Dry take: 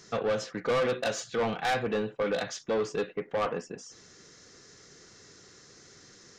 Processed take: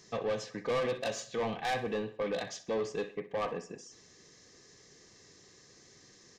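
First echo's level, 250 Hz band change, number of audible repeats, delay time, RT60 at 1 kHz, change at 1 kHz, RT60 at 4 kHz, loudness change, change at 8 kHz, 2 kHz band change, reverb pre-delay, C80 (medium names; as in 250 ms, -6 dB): -16.0 dB, -4.5 dB, 3, 63 ms, no reverb, -4.5 dB, no reverb, -4.5 dB, -4.5 dB, -5.5 dB, no reverb, no reverb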